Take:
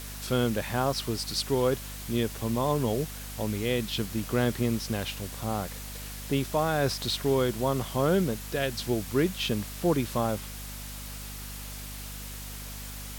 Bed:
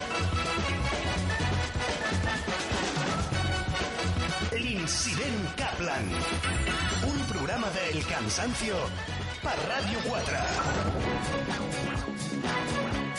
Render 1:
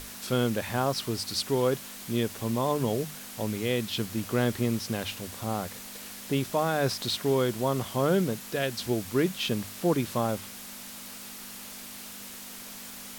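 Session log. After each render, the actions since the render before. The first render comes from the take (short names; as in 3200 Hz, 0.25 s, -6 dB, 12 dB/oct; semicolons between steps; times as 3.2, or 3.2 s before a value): notches 50/100/150 Hz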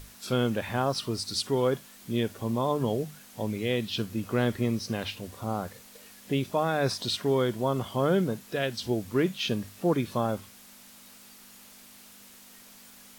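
noise print and reduce 9 dB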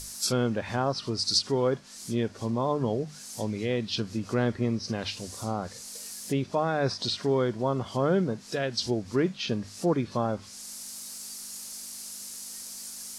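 treble ducked by the level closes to 2200 Hz, closed at -25.5 dBFS; band shelf 7200 Hz +15 dB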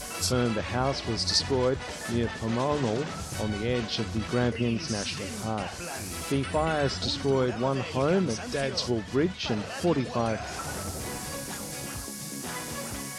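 add bed -7 dB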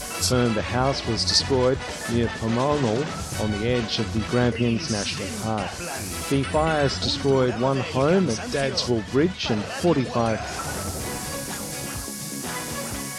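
gain +5 dB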